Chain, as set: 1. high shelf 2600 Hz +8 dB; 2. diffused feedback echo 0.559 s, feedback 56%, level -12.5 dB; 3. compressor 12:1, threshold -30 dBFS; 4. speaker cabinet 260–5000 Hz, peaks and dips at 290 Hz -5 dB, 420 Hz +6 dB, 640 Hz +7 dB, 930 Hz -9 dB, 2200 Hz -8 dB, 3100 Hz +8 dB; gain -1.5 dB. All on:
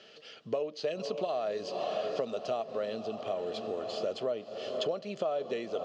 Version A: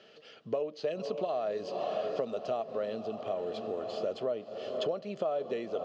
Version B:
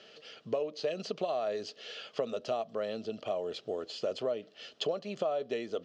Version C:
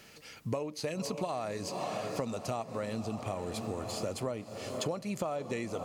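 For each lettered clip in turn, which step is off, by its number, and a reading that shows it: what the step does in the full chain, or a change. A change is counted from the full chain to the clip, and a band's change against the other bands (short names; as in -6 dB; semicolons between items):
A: 1, 4 kHz band -4.5 dB; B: 2, momentary loudness spread change +3 LU; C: 4, 125 Hz band +11.0 dB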